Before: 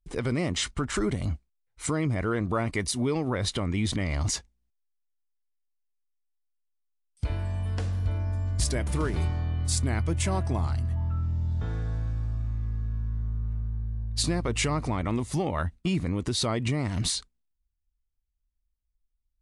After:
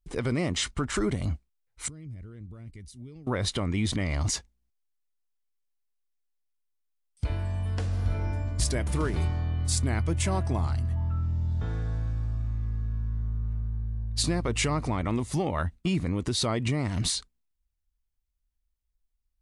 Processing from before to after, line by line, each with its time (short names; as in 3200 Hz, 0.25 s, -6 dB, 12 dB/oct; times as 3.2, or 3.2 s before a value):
1.88–3.27 passive tone stack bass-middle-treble 10-0-1
7.86–8.29 reverb throw, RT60 1.4 s, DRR -2 dB